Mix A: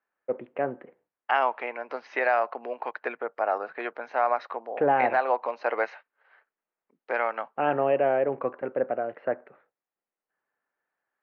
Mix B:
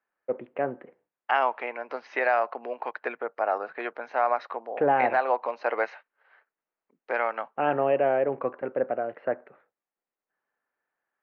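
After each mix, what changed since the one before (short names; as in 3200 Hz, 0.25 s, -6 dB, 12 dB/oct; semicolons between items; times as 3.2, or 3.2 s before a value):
none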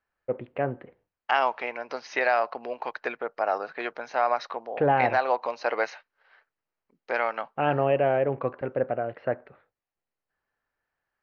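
master: remove three-band isolator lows -23 dB, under 180 Hz, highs -17 dB, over 2900 Hz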